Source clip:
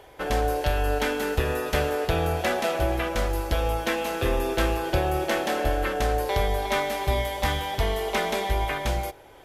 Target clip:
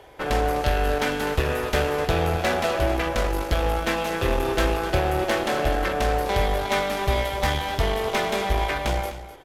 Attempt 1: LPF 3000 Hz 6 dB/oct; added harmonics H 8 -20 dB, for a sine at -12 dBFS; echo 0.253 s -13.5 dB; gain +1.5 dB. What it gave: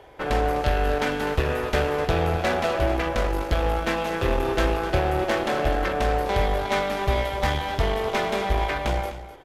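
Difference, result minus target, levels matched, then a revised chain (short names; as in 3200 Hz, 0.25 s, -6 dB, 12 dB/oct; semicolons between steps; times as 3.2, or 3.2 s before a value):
8000 Hz band -4.5 dB
LPF 7800 Hz 6 dB/oct; added harmonics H 8 -20 dB, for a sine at -12 dBFS; echo 0.253 s -13.5 dB; gain +1.5 dB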